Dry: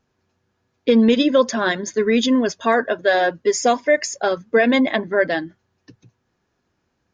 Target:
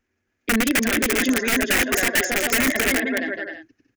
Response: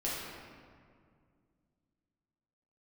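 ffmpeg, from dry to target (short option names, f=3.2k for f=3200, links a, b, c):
-af "atempo=1.8,equalizer=f=180:t=o:w=0.71:g=-11,aecho=1:1:270|432|529.2|587.5|622.5:0.631|0.398|0.251|0.158|0.1,aeval=exprs='(mod(3.76*val(0)+1,2)-1)/3.76':c=same,equalizer=f=125:t=o:w=1:g=-11,equalizer=f=250:t=o:w=1:g=5,equalizer=f=500:t=o:w=1:g=-5,equalizer=f=1k:t=o:w=1:g=-12,equalizer=f=2k:t=o:w=1:g=8,equalizer=f=4k:t=o:w=1:g=-9"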